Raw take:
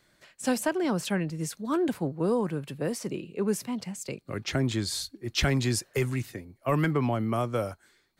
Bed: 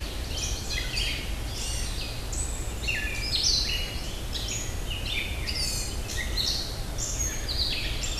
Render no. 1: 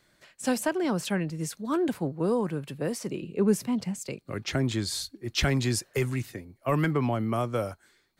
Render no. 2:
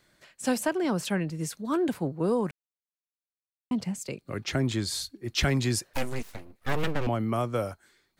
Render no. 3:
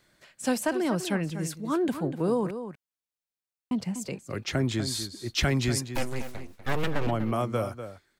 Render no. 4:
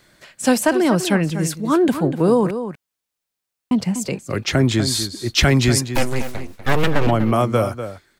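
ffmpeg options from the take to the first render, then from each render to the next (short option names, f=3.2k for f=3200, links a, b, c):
-filter_complex "[0:a]asettb=1/sr,asplit=3[a][b][c];[a]atrim=end=3.224[d];[b]atrim=start=3.22:end=3.99,asetpts=PTS-STARTPTS,afade=t=in:d=0.004:c=qsin,afade=t=out:st=0.766:d=0.004:c=qsin,lowshelf=f=430:g=6.5[e];[c]atrim=start=3.986[f];[d][e]acrossfade=d=0.004:c1=hsin:c2=qsin[g];[g][f]acrossfade=d=0.004:c1=qsin:c2=hsin"
-filter_complex "[0:a]asettb=1/sr,asplit=3[a][b][c];[a]atrim=end=5.934[d];[b]atrim=start=5.93:end=7.07,asetpts=PTS-STARTPTS,afade=t=in:d=0.004:c=qsin,afade=t=out:st=1.136:d=0.004:c=qsin,aeval=exprs='abs(val(0))':c=same[e];[c]atrim=start=7.066[f];[d][e]acrossfade=d=0.004:c1=hsin:c2=qsin[g];[g][f]acrossfade=d=0.004:c1=qsin:c2=hsin,asplit=3[h][i][j];[h]atrim=end=2.51,asetpts=PTS-STARTPTS,afade=t=out:st=2.506:d=0.004:c=hsin[k];[i]atrim=start=2.51:end=3.71,asetpts=PTS-STARTPTS,volume=0[l];[j]atrim=start=3.71,asetpts=PTS-STARTPTS,afade=t=in:d=0.004:c=hsin[m];[k][l][m]concat=n=3:v=0:a=1"
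-filter_complex "[0:a]asplit=2[a][b];[b]adelay=244.9,volume=-10dB,highshelf=f=4k:g=-5.51[c];[a][c]amix=inputs=2:normalize=0"
-af "volume=10.5dB,alimiter=limit=-3dB:level=0:latency=1"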